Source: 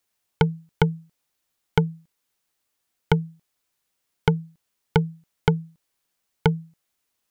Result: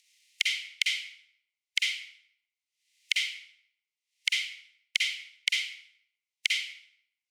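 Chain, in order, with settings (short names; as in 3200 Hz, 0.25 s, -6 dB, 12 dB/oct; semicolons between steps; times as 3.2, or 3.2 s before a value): spectral contrast lowered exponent 0.57; gate with hold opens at -47 dBFS; transient shaper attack +7 dB, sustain -10 dB; Chebyshev high-pass 2000 Hz, order 6; upward compressor, threshold -24 dBFS; air absorption 71 m; reverb RT60 0.70 s, pre-delay 44 ms, DRR -3 dB; gain -6.5 dB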